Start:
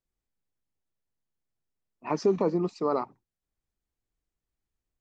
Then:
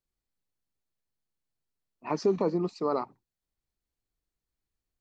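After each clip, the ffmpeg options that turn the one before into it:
ffmpeg -i in.wav -af "equalizer=frequency=4300:width=6.5:gain=5.5,volume=-1.5dB" out.wav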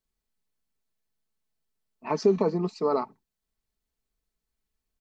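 ffmpeg -i in.wav -af "aecho=1:1:4.6:0.46,volume=2dB" out.wav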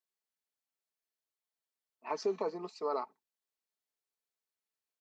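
ffmpeg -i in.wav -af "highpass=470,volume=-6.5dB" out.wav

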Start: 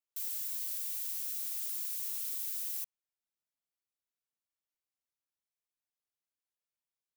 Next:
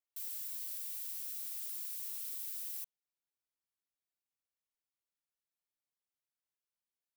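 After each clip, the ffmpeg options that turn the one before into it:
ffmpeg -i in.wav -af "equalizer=frequency=6600:width=4.2:gain=-2.5,volume=-4.5dB" out.wav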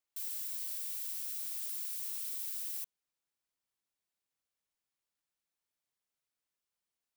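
ffmpeg -i in.wav -af "equalizer=frequency=14000:width_type=o:width=0.26:gain=-6.5,volume=3.5dB" out.wav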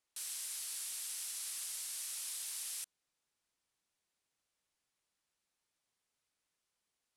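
ffmpeg -i in.wav -af "lowpass=frequency=11000:width=0.5412,lowpass=frequency=11000:width=1.3066,volume=5.5dB" out.wav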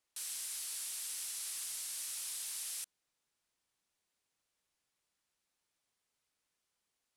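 ffmpeg -i in.wav -af "asoftclip=type=hard:threshold=-36dB,volume=1dB" out.wav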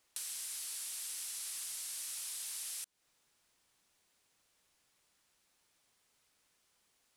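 ffmpeg -i in.wav -af "acompressor=threshold=-52dB:ratio=4,volume=10dB" out.wav

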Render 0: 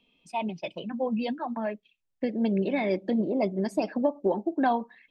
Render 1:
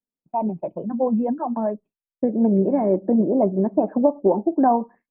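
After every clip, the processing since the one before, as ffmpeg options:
ffmpeg -i in.wav -af "lowpass=frequency=1100:width=0.5412,lowpass=frequency=1100:width=1.3066,aemphasis=mode=reproduction:type=75fm,agate=range=-33dB:threshold=-47dB:ratio=3:detection=peak,volume=7dB" out.wav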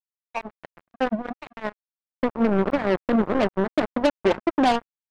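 ffmpeg -i in.wav -af "acrusher=bits=2:mix=0:aa=0.5,volume=-3dB" out.wav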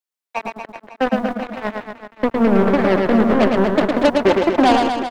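ffmpeg -i in.wav -filter_complex "[0:a]acrossover=split=200[link_01][link_02];[link_01]aeval=exprs='val(0)*gte(abs(val(0)),0.00596)':channel_layout=same[link_03];[link_03][link_02]amix=inputs=2:normalize=0,aecho=1:1:110|236.5|382|549.3|741.7:0.631|0.398|0.251|0.158|0.1,volume=5dB" out.wav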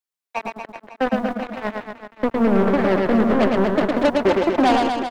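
ffmpeg -i in.wav -af "asoftclip=type=tanh:threshold=-5.5dB,volume=-1.5dB" out.wav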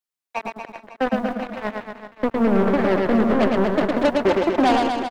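ffmpeg -i in.wav -af "aecho=1:1:311:0.106,volume=-1dB" out.wav

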